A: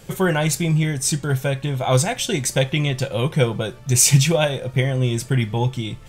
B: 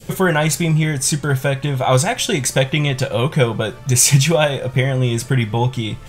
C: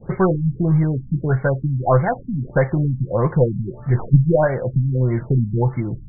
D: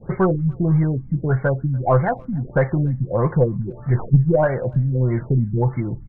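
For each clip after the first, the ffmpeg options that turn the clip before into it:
ffmpeg -i in.wav -filter_complex "[0:a]adynamicequalizer=threshold=0.0224:dfrequency=1200:dqfactor=0.78:tfrequency=1200:tqfactor=0.78:attack=5:release=100:ratio=0.375:range=2:mode=boostabove:tftype=bell,asplit=2[link_01][link_02];[link_02]acompressor=threshold=-25dB:ratio=6,volume=-1dB[link_03];[link_01][link_03]amix=inputs=2:normalize=0" out.wav
ffmpeg -i in.wav -af "aeval=exprs='0.841*(cos(1*acos(clip(val(0)/0.841,-1,1)))-cos(1*PI/2))+0.188*(cos(2*acos(clip(val(0)/0.841,-1,1)))-cos(2*PI/2))':channel_layout=same,afftfilt=real='re*lt(b*sr/1024,260*pow(2300/260,0.5+0.5*sin(2*PI*1.6*pts/sr)))':imag='im*lt(b*sr/1024,260*pow(2300/260,0.5+0.5*sin(2*PI*1.6*pts/sr)))':win_size=1024:overlap=0.75" out.wav
ffmpeg -i in.wav -filter_complex "[0:a]asplit=2[link_01][link_02];[link_02]asoftclip=type=tanh:threshold=-11dB,volume=-11dB[link_03];[link_01][link_03]amix=inputs=2:normalize=0,asplit=2[link_04][link_05];[link_05]adelay=290,highpass=300,lowpass=3400,asoftclip=type=hard:threshold=-9dB,volume=-28dB[link_06];[link_04][link_06]amix=inputs=2:normalize=0,volume=-2.5dB" out.wav

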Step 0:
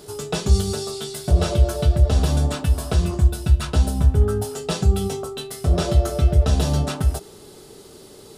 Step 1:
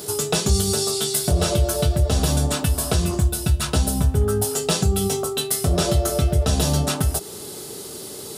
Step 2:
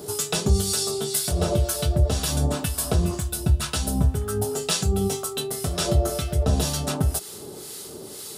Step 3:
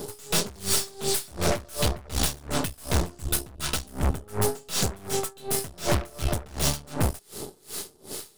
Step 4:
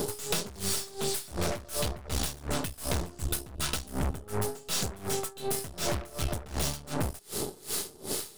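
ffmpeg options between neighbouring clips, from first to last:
ffmpeg -i in.wav -af "highpass=77,acompressor=threshold=-32dB:ratio=1.5,crystalizer=i=1.5:c=0,volume=6.5dB" out.wav
ffmpeg -i in.wav -filter_complex "[0:a]acrossover=split=1100[link_01][link_02];[link_01]aeval=exprs='val(0)*(1-0.7/2+0.7/2*cos(2*PI*2*n/s))':channel_layout=same[link_03];[link_02]aeval=exprs='val(0)*(1-0.7/2-0.7/2*cos(2*PI*2*n/s))':channel_layout=same[link_04];[link_03][link_04]amix=inputs=2:normalize=0" out.wav
ffmpeg -i in.wav -af "volume=17dB,asoftclip=hard,volume=-17dB,aeval=exprs='0.15*(cos(1*acos(clip(val(0)/0.15,-1,1)))-cos(1*PI/2))+0.0668*(cos(5*acos(clip(val(0)/0.15,-1,1)))-cos(5*PI/2))+0.0473*(cos(6*acos(clip(val(0)/0.15,-1,1)))-cos(6*PI/2))+0.0376*(cos(7*acos(clip(val(0)/0.15,-1,1)))-cos(7*PI/2))':channel_layout=same,aeval=exprs='val(0)*pow(10,-26*(0.5-0.5*cos(2*PI*2.7*n/s))/20)':channel_layout=same" out.wav
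ffmpeg -i in.wav -af "acompressor=threshold=-34dB:ratio=6,volume=6.5dB" out.wav

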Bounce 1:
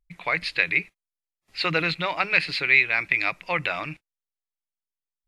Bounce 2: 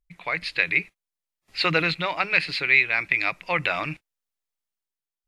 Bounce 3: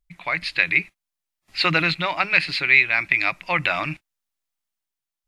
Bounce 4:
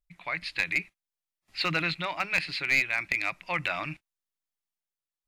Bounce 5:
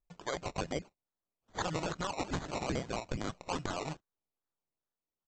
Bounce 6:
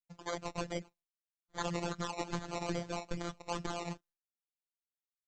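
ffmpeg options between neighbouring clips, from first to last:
ffmpeg -i in.wav -af "dynaudnorm=framelen=120:gausssize=9:maxgain=7.5dB,volume=-3dB" out.wav
ffmpeg -i in.wav -af "equalizer=frequency=460:width=5.1:gain=-10.5,volume=3dB" out.wav
ffmpeg -i in.wav -af "aeval=exprs='clip(val(0),-1,0.282)':channel_layout=same,volume=-8dB" out.wav
ffmpeg -i in.wav -af "aresample=16000,acrusher=samples=8:mix=1:aa=0.000001:lfo=1:lforange=4.8:lforate=2.4,aresample=44100,acompressor=threshold=-30dB:ratio=6,volume=-1.5dB" out.wav
ffmpeg -i in.wav -af "agate=range=-33dB:threshold=-58dB:ratio=3:detection=peak,afftfilt=real='hypot(re,im)*cos(PI*b)':imag='0':win_size=1024:overlap=0.75,volume=1.5dB" out.wav

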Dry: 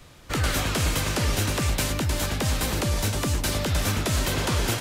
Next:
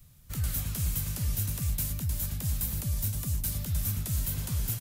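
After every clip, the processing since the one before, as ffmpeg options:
ffmpeg -i in.wav -af "firequalizer=gain_entry='entry(150,0);entry(320,-18);entry(14000,10)':delay=0.05:min_phase=1,volume=-4.5dB" out.wav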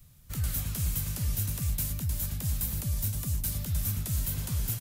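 ffmpeg -i in.wav -af anull out.wav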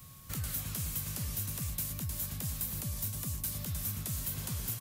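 ffmpeg -i in.wav -af "highpass=frequency=150:poles=1,acompressor=threshold=-51dB:ratio=2,aeval=exprs='val(0)+0.000282*sin(2*PI*1100*n/s)':channel_layout=same,volume=8.5dB" out.wav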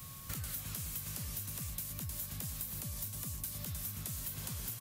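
ffmpeg -i in.wav -af "lowshelf=frequency=470:gain=-3,acompressor=threshold=-43dB:ratio=6,volume=5dB" out.wav

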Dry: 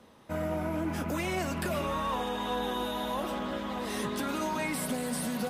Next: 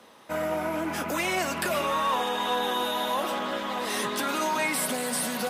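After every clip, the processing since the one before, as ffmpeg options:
ffmpeg -i in.wav -af "highpass=frequency=630:poles=1,volume=8dB" out.wav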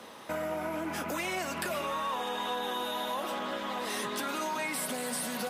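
ffmpeg -i in.wav -af "acompressor=threshold=-42dB:ratio=2.5,volume=5dB" out.wav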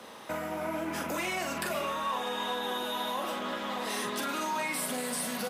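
ffmpeg -i in.wav -filter_complex "[0:a]acrossover=split=170[link_01][link_02];[link_01]acrusher=samples=24:mix=1:aa=0.000001[link_03];[link_02]asplit=2[link_04][link_05];[link_05]adelay=44,volume=-6dB[link_06];[link_04][link_06]amix=inputs=2:normalize=0[link_07];[link_03][link_07]amix=inputs=2:normalize=0" out.wav

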